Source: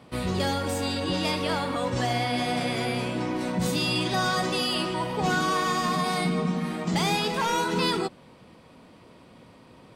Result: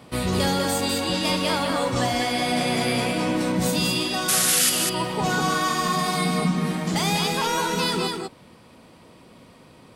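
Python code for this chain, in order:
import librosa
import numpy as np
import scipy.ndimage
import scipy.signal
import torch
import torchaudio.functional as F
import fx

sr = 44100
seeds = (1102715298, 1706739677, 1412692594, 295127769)

y = fx.spec_paint(x, sr, seeds[0], shape='noise', start_s=4.28, length_s=0.42, low_hz=1200.0, high_hz=12000.0, level_db=-21.0)
y = fx.rider(y, sr, range_db=5, speed_s=0.5)
y = fx.high_shelf(y, sr, hz=6300.0, db=8.0)
y = y + 10.0 ** (-4.0 / 20.0) * np.pad(y, (int(199 * sr / 1000.0), 0))[:len(y)]
y = fx.dmg_crackle(y, sr, seeds[1], per_s=110.0, level_db=-47.0, at=(4.51, 5.07), fade=0.02)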